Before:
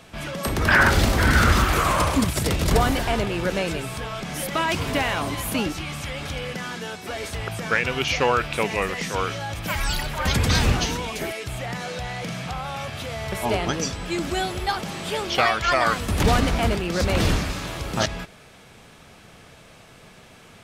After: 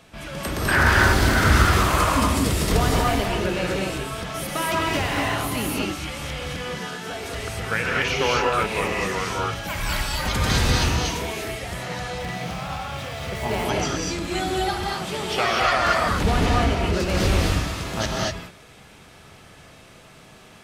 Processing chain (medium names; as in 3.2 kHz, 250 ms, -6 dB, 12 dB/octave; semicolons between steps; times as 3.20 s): 16.04–16.93 s: treble shelf 8 kHz -10.5 dB; gated-style reverb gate 270 ms rising, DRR -3 dB; 12.18–13.65 s: sliding maximum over 3 samples; trim -4 dB